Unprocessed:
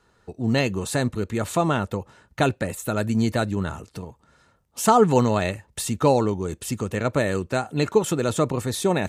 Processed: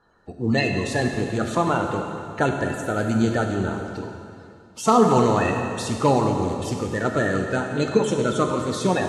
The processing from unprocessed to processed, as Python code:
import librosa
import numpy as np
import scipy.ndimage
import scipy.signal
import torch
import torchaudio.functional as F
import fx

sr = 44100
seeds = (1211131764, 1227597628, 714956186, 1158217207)

y = fx.spec_quant(x, sr, step_db=30)
y = scipy.signal.sosfilt(scipy.signal.butter(2, 6600.0, 'lowpass', fs=sr, output='sos'), y)
y = fx.rev_plate(y, sr, seeds[0], rt60_s=2.4, hf_ratio=0.95, predelay_ms=0, drr_db=2.5)